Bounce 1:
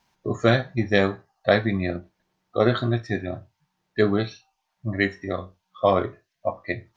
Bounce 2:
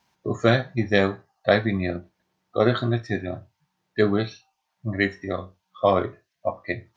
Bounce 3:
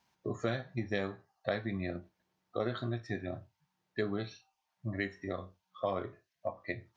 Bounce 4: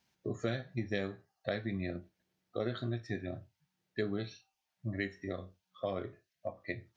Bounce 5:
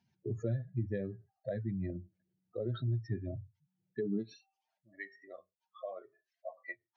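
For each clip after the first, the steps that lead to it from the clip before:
high-pass 55 Hz
compression 2.5:1, threshold -27 dBFS, peak gain reduction 10 dB; trim -6.5 dB
peaking EQ 980 Hz -9.5 dB 0.82 oct
spectral contrast enhancement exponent 2.1; high-pass sweep 98 Hz -> 890 Hz, 3.81–4.99 s; trim -2.5 dB

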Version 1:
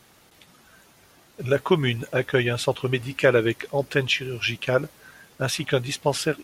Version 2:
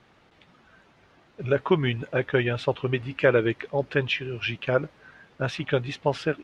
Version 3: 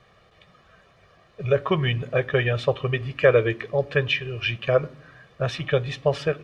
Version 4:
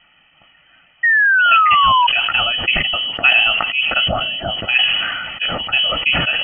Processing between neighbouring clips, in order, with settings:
low-pass 2.9 kHz 12 dB/octave; trim -1.5 dB
reverberation RT60 0.60 s, pre-delay 3 ms, DRR 18 dB
frequency inversion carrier 3.1 kHz; painted sound fall, 1.03–2.07 s, 950–1900 Hz -15 dBFS; decay stretcher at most 30 dB/s; trim +2.5 dB

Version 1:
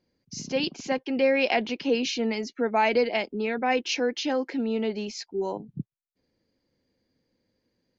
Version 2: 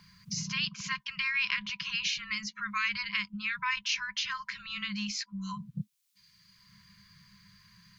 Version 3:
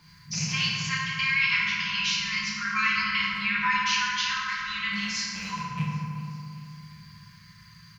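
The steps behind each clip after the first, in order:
FFT band-reject 210–980 Hz; peaking EQ 890 Hz +11 dB 0.34 oct; three bands compressed up and down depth 70%
rattle on loud lows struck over -37 dBFS, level -29 dBFS; feedback delay 387 ms, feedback 51%, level -19 dB; FDN reverb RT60 2.8 s, low-frequency decay 1.25×, high-frequency decay 0.4×, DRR -7.5 dB

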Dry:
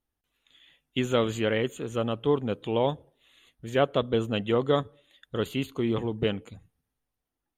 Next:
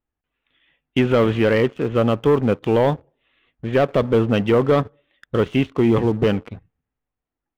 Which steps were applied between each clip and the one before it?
low-pass 2.7 kHz 24 dB/octave; waveshaping leveller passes 2; loudness maximiser +12.5 dB; trim -8 dB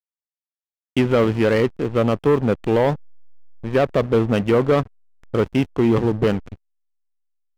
hysteresis with a dead band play -24 dBFS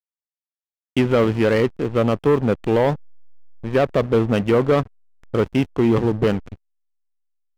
no audible change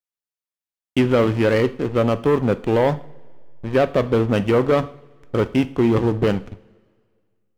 two-slope reverb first 0.45 s, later 1.9 s, from -19 dB, DRR 11.5 dB

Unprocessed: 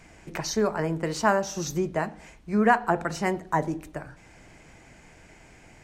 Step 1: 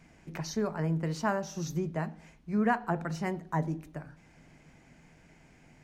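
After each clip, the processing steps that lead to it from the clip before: graphic EQ with 31 bands 160 Hz +10 dB, 250 Hz +7 dB, 8 kHz -5 dB; trim -8.5 dB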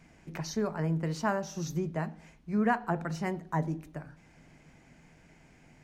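no audible change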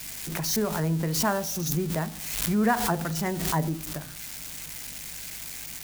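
zero-crossing glitches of -29.5 dBFS; hum 50 Hz, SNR 25 dB; swell ahead of each attack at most 42 dB/s; trim +3.5 dB

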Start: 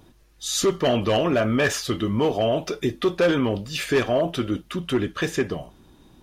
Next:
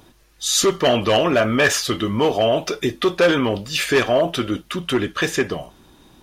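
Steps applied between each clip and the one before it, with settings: bass shelf 450 Hz -7 dB; trim +7 dB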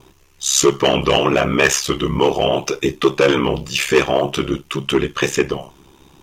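vibrato 0.81 Hz 22 cents; ring modulator 34 Hz; rippled EQ curve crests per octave 0.73, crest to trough 6 dB; trim +4.5 dB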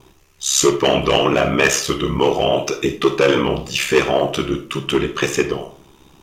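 algorithmic reverb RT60 0.43 s, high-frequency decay 0.55×, pre-delay 5 ms, DRR 8 dB; trim -1 dB

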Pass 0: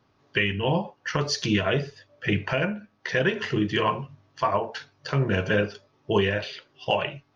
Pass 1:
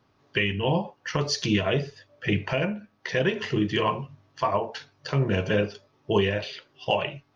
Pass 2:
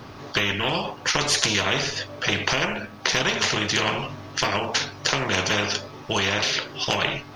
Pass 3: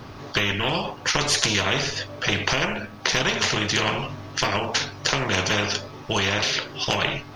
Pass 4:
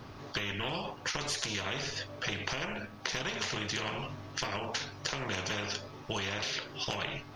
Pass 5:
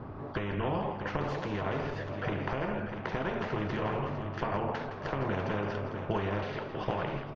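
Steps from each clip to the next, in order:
dynamic bell 1.5 kHz, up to -6 dB, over -42 dBFS, Q 2.6
spectrum-flattening compressor 4:1; trim +8.5 dB
bass shelf 91 Hz +6 dB
compression, threshold -23 dBFS, peak gain reduction 7 dB; trim -8 dB
low-pass 1.1 kHz 12 dB/octave; on a send: multi-tap echo 164/459/645 ms -10/-13.5/-9 dB; on the sum: trim +6 dB

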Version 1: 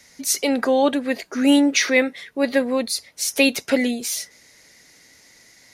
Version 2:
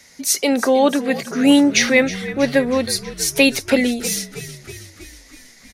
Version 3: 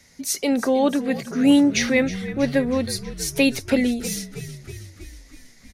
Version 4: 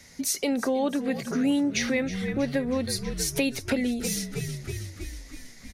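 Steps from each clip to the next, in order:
frequency-shifting echo 320 ms, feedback 64%, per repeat -48 Hz, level -15 dB; trim +3 dB
bass shelf 230 Hz +11.5 dB; trim -7 dB
compression 3:1, threshold -29 dBFS, peak gain reduction 13 dB; trim +3 dB

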